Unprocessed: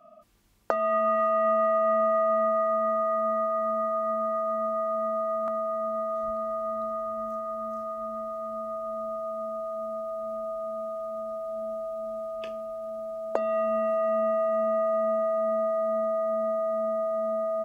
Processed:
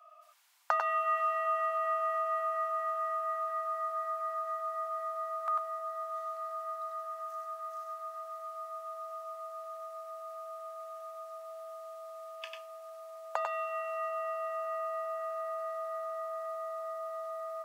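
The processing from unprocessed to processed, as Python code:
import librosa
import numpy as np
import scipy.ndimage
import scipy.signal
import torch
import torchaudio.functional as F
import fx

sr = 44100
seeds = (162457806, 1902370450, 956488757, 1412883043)

p1 = scipy.signal.sosfilt(scipy.signal.cheby2(4, 50, 330.0, 'highpass', fs=sr, output='sos'), x)
p2 = p1 + fx.echo_multitap(p1, sr, ms=(96, 106), db=(-4.0, -12.5), dry=0)
y = p2 * librosa.db_to_amplitude(1.5)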